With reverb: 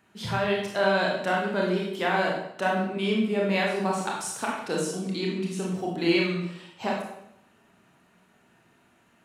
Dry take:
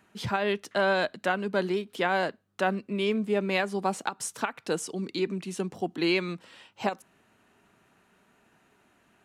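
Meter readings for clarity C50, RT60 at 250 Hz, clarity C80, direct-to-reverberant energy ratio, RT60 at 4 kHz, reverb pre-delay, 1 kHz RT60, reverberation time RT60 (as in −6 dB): 2.0 dB, 0.85 s, 5.5 dB, −2.5 dB, 0.65 s, 24 ms, 0.70 s, 0.75 s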